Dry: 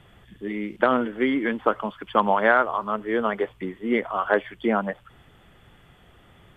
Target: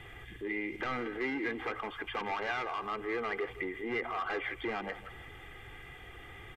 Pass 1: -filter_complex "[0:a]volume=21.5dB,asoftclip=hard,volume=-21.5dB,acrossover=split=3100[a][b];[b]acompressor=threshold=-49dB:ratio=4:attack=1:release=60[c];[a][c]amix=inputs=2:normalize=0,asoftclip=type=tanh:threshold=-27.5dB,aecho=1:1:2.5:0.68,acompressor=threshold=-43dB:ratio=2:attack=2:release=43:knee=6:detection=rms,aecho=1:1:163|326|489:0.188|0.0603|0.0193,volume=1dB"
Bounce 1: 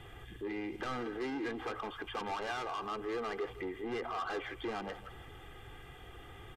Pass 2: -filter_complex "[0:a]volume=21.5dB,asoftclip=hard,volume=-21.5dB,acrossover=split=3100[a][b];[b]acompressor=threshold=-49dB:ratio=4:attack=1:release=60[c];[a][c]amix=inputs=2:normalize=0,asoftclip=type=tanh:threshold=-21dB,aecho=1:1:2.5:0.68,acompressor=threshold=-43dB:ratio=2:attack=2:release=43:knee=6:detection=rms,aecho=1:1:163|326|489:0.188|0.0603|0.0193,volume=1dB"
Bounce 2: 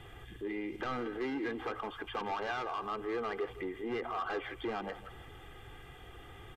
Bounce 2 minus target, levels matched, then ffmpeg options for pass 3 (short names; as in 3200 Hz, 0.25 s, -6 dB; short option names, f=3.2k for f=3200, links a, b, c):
2000 Hz band -4.0 dB
-filter_complex "[0:a]volume=21.5dB,asoftclip=hard,volume=-21.5dB,acrossover=split=3100[a][b];[b]acompressor=threshold=-49dB:ratio=4:attack=1:release=60[c];[a][c]amix=inputs=2:normalize=0,asoftclip=type=tanh:threshold=-21dB,aecho=1:1:2.5:0.68,acompressor=threshold=-43dB:ratio=2:attack=2:release=43:knee=6:detection=rms,equalizer=f=2.1k:t=o:w=0.51:g=10,aecho=1:1:163|326|489:0.188|0.0603|0.0193,volume=1dB"